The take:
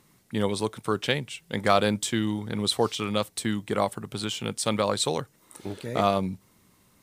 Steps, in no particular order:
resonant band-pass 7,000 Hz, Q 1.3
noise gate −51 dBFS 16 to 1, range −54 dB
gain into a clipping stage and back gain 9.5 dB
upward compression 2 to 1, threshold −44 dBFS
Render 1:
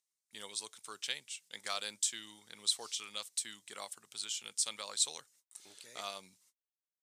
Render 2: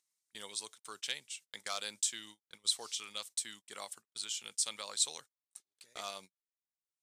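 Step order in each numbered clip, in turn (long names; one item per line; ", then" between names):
noise gate, then upward compression, then resonant band-pass, then gain into a clipping stage and back
gain into a clipping stage and back, then resonant band-pass, then noise gate, then upward compression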